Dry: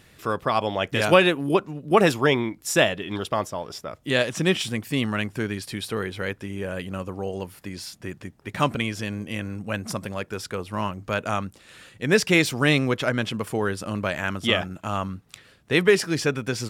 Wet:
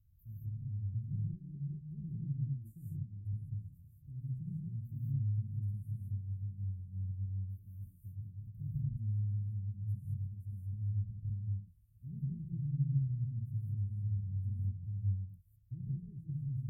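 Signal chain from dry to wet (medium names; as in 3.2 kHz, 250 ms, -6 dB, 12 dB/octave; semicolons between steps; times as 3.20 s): low-pass that closes with the level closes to 2.3 kHz, closed at -17.5 dBFS; inverse Chebyshev band-stop 550–5000 Hz, stop band 80 dB; harmonic-percussive split harmonic -4 dB; in parallel at -8 dB: bit crusher 4-bit; on the sum: gated-style reverb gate 230 ms rising, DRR -4.5 dB; dynamic bell 150 Hz, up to +7 dB, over -50 dBFS, Q 0.77; trim -4 dB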